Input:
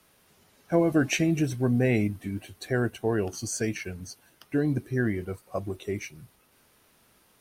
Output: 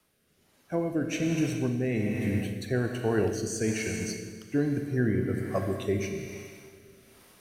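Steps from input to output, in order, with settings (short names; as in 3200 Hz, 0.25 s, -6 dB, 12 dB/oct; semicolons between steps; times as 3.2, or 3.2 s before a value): Schroeder reverb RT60 2.3 s, combs from 28 ms, DRR 4 dB; vocal rider within 5 dB 0.5 s; rotary speaker horn 1.2 Hz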